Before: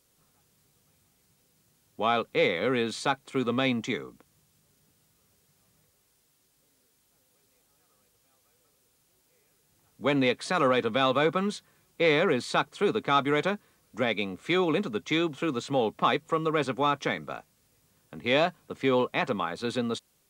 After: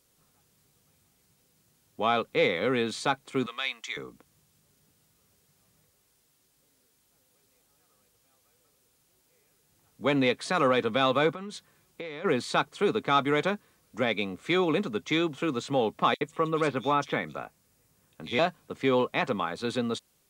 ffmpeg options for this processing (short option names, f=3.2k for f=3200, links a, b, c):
-filter_complex "[0:a]asettb=1/sr,asplit=3[a][b][c];[a]atrim=end=3.464[d];[b]atrim=start=3.46:end=3.97,asetpts=PTS-STARTPTS,afade=t=in:d=0.004:c=qsin,afade=t=out:st=0.506:d=0.004:c=qsin,highpass=1.4k[e];[c]atrim=start=3.966[f];[d][e]acrossfade=d=0.004:c1=hsin:c2=qsin[g];[g][f]acrossfade=d=0.004:c1=qsin:c2=hsin,asplit=3[h][i][j];[h]afade=t=out:st=11.32:d=0.02[k];[i]acompressor=threshold=-34dB:ratio=16:attack=3.2:release=140:knee=1:detection=peak,afade=t=in:st=11.32:d=0.02,afade=t=out:st=12.24:d=0.02[l];[j]afade=t=in:st=12.24:d=0.02[m];[k][l][m]amix=inputs=3:normalize=0,asettb=1/sr,asplit=3[n][o][p];[n]atrim=end=16.144[q];[o]atrim=start=16.14:end=18.39,asetpts=PTS-STARTPTS,afade=t=in:d=0.004:c=qsin,afade=t=out:st=2.246:d=0.004:c=qsin,acrossover=split=3500[r][s];[r]adelay=70[t];[t][s]amix=inputs=2:normalize=0,atrim=end_sample=99225[u];[p]atrim=start=18.386[v];[q][u]acrossfade=d=0.004:c1=hsin:c2=qsin[w];[w][v]acrossfade=d=0.004:c1=qsin:c2=hsin"